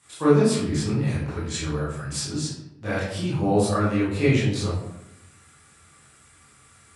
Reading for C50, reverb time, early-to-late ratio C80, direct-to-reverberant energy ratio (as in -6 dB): 0.5 dB, 0.85 s, 5.0 dB, -11.0 dB